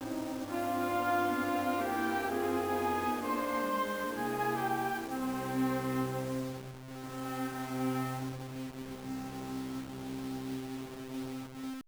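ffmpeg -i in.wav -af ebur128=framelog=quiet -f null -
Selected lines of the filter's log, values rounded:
Integrated loudness:
  I:         -35.1 LUFS
  Threshold: -45.1 LUFS
Loudness range:
  LRA:         7.7 LU
  Threshold: -55.0 LUFS
  LRA low:   -40.1 LUFS
  LRA high:  -32.5 LUFS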